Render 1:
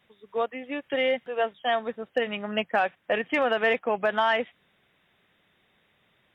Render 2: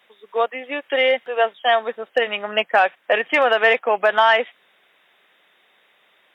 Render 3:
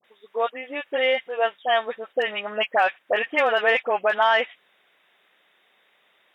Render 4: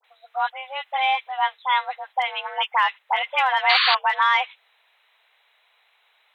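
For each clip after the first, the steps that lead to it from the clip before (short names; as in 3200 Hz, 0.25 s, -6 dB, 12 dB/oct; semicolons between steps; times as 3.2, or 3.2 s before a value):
HPF 470 Hz 12 dB/oct; gain +9 dB
dispersion highs, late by 45 ms, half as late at 1200 Hz; gain -4 dB
frequency shift +270 Hz; painted sound noise, 3.69–3.95, 1000–4700 Hz -19 dBFS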